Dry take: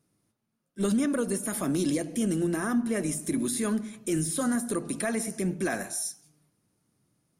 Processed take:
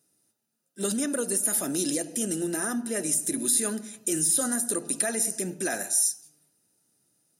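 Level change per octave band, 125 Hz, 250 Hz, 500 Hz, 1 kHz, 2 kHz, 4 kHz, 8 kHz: −7.0, −4.0, −1.0, −1.5, 0.0, +4.5, +9.5 decibels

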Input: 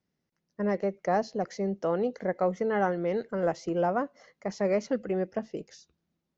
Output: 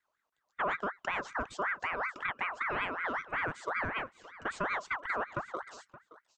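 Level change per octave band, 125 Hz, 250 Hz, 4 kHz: −11.5, −15.0, +2.0 decibels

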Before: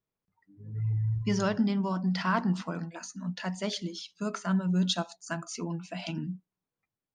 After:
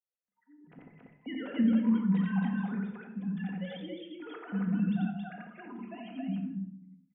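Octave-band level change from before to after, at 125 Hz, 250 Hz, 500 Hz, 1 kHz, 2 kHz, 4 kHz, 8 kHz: −5.5 dB, +1.0 dB, −9.0 dB, −10.0 dB, −6.5 dB, −14.0 dB, below −40 dB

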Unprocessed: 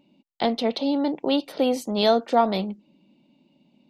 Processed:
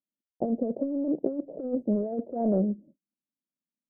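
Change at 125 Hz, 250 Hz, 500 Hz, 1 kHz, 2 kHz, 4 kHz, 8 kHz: can't be measured, −2.5 dB, −7.0 dB, −16.0 dB, below −35 dB, below −40 dB, below −35 dB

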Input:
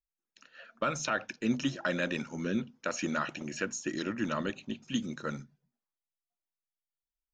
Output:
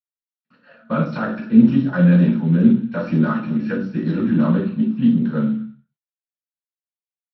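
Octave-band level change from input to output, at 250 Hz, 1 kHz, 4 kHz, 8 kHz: +19.5 dB, +6.0 dB, can't be measured, below −25 dB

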